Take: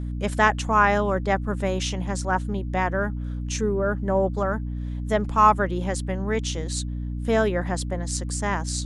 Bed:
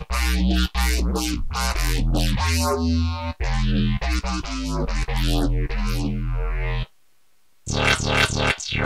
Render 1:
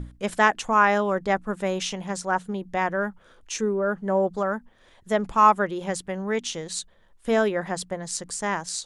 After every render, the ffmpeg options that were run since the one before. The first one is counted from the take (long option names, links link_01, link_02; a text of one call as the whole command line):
ffmpeg -i in.wav -af "bandreject=frequency=60:width_type=h:width=6,bandreject=frequency=120:width_type=h:width=6,bandreject=frequency=180:width_type=h:width=6,bandreject=frequency=240:width_type=h:width=6,bandreject=frequency=300:width_type=h:width=6" out.wav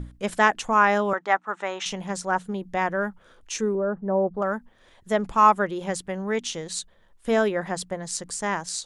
ffmpeg -i in.wav -filter_complex "[0:a]asettb=1/sr,asplit=3[link_01][link_02][link_03];[link_01]atrim=end=1.134[link_04];[link_02]atrim=start=1.13:end=1.86,asetpts=PTS-STARTPTS,afade=type=in:duration=0.004:curve=qsin,afade=type=out:start_time=0.726:duration=0.004:curve=qsin,highpass=480,equalizer=frequency=510:width_type=q:width=4:gain=-6,equalizer=frequency=870:width_type=q:width=4:gain=7,equalizer=frequency=1300:width_type=q:width=4:gain=7,equalizer=frequency=1900:width_type=q:width=4:gain=4,equalizer=frequency=4800:width_type=q:width=4:gain=-8,lowpass=frequency=6700:width=0.5412,lowpass=frequency=6700:width=1.3066[link_05];[link_03]atrim=start=1.856[link_06];[link_04][link_05]acrossfade=duration=0.004:curve1=hsin:curve2=qsin[link_07];[link_07][link_06]acrossfade=duration=0.004:curve1=qsin:curve2=hsin,asettb=1/sr,asplit=3[link_08][link_09][link_10];[link_08]atrim=end=3.754[link_11];[link_09]atrim=start=3.75:end=4.42,asetpts=PTS-STARTPTS,afade=type=in:duration=0.004:curve=qsin,afade=type=out:start_time=0.666:duration=0.004:curve=qsin,lowpass=1000[link_12];[link_10]atrim=start=4.416[link_13];[link_11][link_12]acrossfade=duration=0.004:curve1=hsin:curve2=qsin[link_14];[link_14][link_13]acrossfade=duration=0.004:curve1=qsin:curve2=hsin" out.wav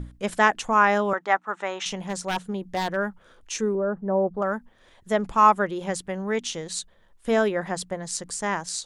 ffmpeg -i in.wav -filter_complex "[0:a]asplit=3[link_01][link_02][link_03];[link_01]afade=type=out:start_time=2.03:duration=0.02[link_04];[link_02]aeval=exprs='0.106*(abs(mod(val(0)/0.106+3,4)-2)-1)':channel_layout=same,afade=type=in:start_time=2.03:duration=0.02,afade=type=out:start_time=2.95:duration=0.02[link_05];[link_03]afade=type=in:start_time=2.95:duration=0.02[link_06];[link_04][link_05][link_06]amix=inputs=3:normalize=0" out.wav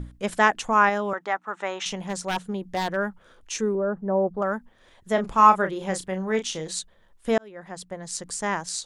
ffmpeg -i in.wav -filter_complex "[0:a]asettb=1/sr,asplit=3[link_01][link_02][link_03];[link_01]atrim=end=0.894[link_04];[link_02]atrim=start=0.89:end=1.6,asetpts=PTS-STARTPTS,afade=type=in:duration=0.004:curve=qsin,afade=type=out:start_time=0.706:duration=0.004:curve=qsin,acompressor=threshold=-28dB:ratio=1.5:attack=3.2:release=140:knee=1:detection=peak[link_05];[link_03]atrim=start=1.596[link_06];[link_04][link_05]acrossfade=duration=0.004:curve1=hsin:curve2=qsin[link_07];[link_07][link_06]acrossfade=duration=0.004:curve1=qsin:curve2=hsin,asettb=1/sr,asplit=3[link_08][link_09][link_10];[link_08]atrim=end=5.134[link_11];[link_09]atrim=start=5.13:end=6.8,asetpts=PTS-STARTPTS,afade=type=in:duration=0.004:curve=qsin,afade=type=out:start_time=1.666:duration=0.004:curve=qsin,asplit=2[link_12][link_13];[link_13]adelay=32,volume=-8.5dB[link_14];[link_12][link_14]amix=inputs=2:normalize=0,atrim=end_sample=73647[link_15];[link_10]atrim=start=6.796[link_16];[link_11][link_15]acrossfade=duration=0.004:curve1=hsin:curve2=qsin[link_17];[link_17][link_16]acrossfade=duration=0.004:curve1=qsin:curve2=hsin,asplit=2[link_18][link_19];[link_18]atrim=end=7.38,asetpts=PTS-STARTPTS,afade=type=out:start_time=7.376:duration=0.004:curve=hsin[link_20];[link_19]atrim=start=7.38,asetpts=PTS-STARTPTS,afade=type=in:duration=0.95[link_21];[link_20][link_21]concat=n=2:v=0:a=1" out.wav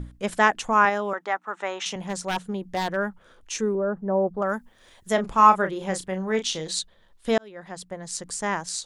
ffmpeg -i in.wav -filter_complex "[0:a]asettb=1/sr,asplit=3[link_01][link_02][link_03];[link_01]atrim=end=0.854[link_04];[link_02]atrim=start=0.85:end=1.96,asetpts=PTS-STARTPTS,afade=type=in:duration=0.004:curve=qsin,afade=type=out:start_time=1.106:duration=0.004:curve=qsin,highpass=200[link_05];[link_03]atrim=start=1.956[link_06];[link_04][link_05]acrossfade=duration=0.004:curve1=hsin:curve2=qsin[link_07];[link_07][link_06]acrossfade=duration=0.004:curve1=qsin:curve2=hsin,asettb=1/sr,asplit=3[link_08][link_09][link_10];[link_08]atrim=end=4.494[link_11];[link_09]atrim=start=4.49:end=5.17,asetpts=PTS-STARTPTS,afade=type=in:duration=0.004:curve=qsin,afade=type=out:start_time=0.676:duration=0.004:curve=qsin,highshelf=frequency=4000:gain=10.5[link_12];[link_10]atrim=start=5.166[link_13];[link_11][link_12]acrossfade=duration=0.004:curve1=hsin:curve2=qsin[link_14];[link_14][link_13]acrossfade=duration=0.004:curve1=qsin:curve2=hsin,asettb=1/sr,asplit=3[link_15][link_16][link_17];[link_15]atrim=end=6.424[link_18];[link_16]atrim=start=6.42:end=7.77,asetpts=PTS-STARTPTS,afade=type=in:duration=0.004:curve=qsin,afade=type=out:start_time=1.346:duration=0.004:curve=qsin,equalizer=frequency=4000:width_type=o:width=0.84:gain=6.5[link_19];[link_17]atrim=start=7.766[link_20];[link_18][link_19]acrossfade=duration=0.004:curve1=hsin:curve2=qsin[link_21];[link_21][link_20]acrossfade=duration=0.004:curve1=qsin:curve2=hsin" out.wav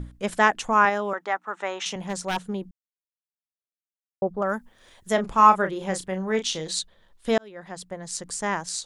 ffmpeg -i in.wav -filter_complex "[0:a]asplit=3[link_01][link_02][link_03];[link_01]atrim=end=2.71,asetpts=PTS-STARTPTS,afade=type=out:start_time=2.706:duration=0.004:curve=hsin[link_04];[link_02]atrim=start=2.71:end=4.22,asetpts=PTS-STARTPTS,volume=0[link_05];[link_03]atrim=start=4.22,asetpts=PTS-STARTPTS,afade=type=in:duration=0.004:curve=hsin[link_06];[link_04][link_05][link_06]concat=n=3:v=0:a=1" out.wav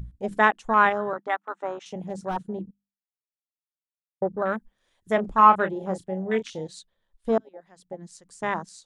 ffmpeg -i in.wav -af "bandreject=frequency=50:width_type=h:width=6,bandreject=frequency=100:width_type=h:width=6,bandreject=frequency=150:width_type=h:width=6,bandreject=frequency=200:width_type=h:width=6,bandreject=frequency=250:width_type=h:width=6,afwtdn=0.0355" out.wav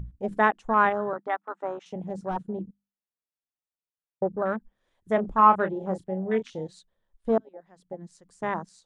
ffmpeg -i in.wav -af "highshelf=frequency=2100:gain=-10.5" out.wav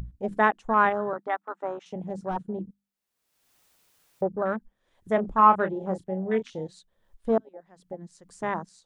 ffmpeg -i in.wav -af "acompressor=mode=upward:threshold=-41dB:ratio=2.5" out.wav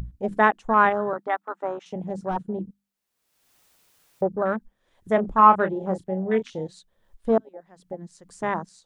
ffmpeg -i in.wav -af "volume=3dB" out.wav